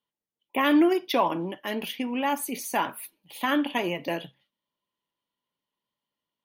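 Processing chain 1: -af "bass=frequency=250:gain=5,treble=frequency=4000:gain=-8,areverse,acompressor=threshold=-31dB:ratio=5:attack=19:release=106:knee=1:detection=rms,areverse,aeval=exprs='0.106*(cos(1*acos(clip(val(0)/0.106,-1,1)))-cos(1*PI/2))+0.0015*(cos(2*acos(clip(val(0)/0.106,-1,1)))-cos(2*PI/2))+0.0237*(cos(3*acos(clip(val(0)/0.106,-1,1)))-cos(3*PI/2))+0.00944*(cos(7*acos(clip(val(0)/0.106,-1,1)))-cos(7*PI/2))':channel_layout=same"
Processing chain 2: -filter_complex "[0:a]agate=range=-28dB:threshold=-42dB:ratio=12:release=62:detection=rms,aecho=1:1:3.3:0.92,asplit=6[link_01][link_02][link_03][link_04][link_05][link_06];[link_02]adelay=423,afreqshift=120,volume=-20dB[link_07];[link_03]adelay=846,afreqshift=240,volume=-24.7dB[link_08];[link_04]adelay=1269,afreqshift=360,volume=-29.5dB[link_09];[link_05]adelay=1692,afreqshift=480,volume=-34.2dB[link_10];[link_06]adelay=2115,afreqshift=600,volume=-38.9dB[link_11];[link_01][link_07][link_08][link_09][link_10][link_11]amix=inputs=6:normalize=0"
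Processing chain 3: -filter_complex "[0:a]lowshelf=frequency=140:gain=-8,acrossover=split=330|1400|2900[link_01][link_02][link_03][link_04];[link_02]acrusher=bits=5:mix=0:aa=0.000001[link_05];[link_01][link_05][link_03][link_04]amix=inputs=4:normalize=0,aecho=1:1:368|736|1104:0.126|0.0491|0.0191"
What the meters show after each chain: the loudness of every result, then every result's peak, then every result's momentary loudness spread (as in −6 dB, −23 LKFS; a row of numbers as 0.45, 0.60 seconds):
−41.0, −22.5, −27.5 LKFS; −19.0, −7.0, −10.5 dBFS; 6, 15, 11 LU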